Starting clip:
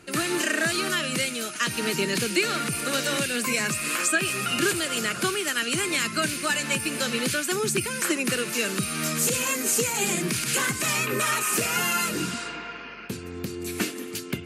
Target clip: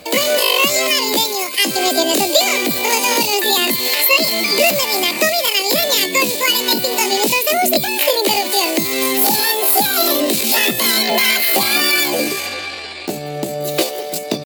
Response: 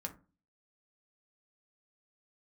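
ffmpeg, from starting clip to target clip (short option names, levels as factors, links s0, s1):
-af "acontrast=84,asetrate=74167,aresample=44100,atempo=0.594604,volume=1.58"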